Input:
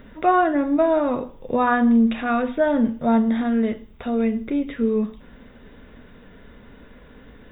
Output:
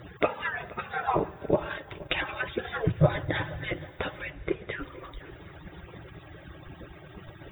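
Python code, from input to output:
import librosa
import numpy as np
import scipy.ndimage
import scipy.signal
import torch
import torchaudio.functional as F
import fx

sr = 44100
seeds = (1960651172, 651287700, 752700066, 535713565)

y = fx.hpss_only(x, sr, part='percussive')
y = fx.peak_eq(y, sr, hz=120.0, db=14.5, octaves=1.5, at=(2.87, 3.67))
y = fx.lowpass(y, sr, hz=1500.0, slope=6, at=(4.3, 4.78))
y = fx.echo_swing(y, sr, ms=788, ratio=1.5, feedback_pct=32, wet_db=-20.5)
y = fx.rev_schroeder(y, sr, rt60_s=3.4, comb_ms=30, drr_db=19.0)
y = fx.transient(y, sr, attack_db=3, sustain_db=-4, at=(1.65, 2.11))
y = y * librosa.db_to_amplitude(7.5)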